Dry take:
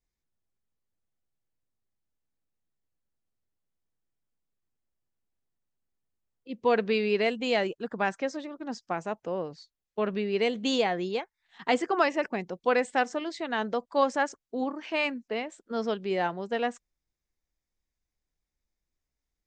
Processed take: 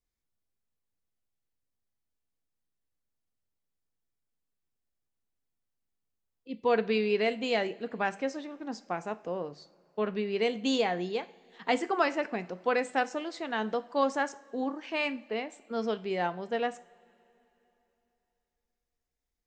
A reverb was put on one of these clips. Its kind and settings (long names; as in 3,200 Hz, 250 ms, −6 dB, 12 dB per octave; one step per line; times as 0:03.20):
coupled-rooms reverb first 0.41 s, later 3.4 s, from −21 dB, DRR 12 dB
level −2.5 dB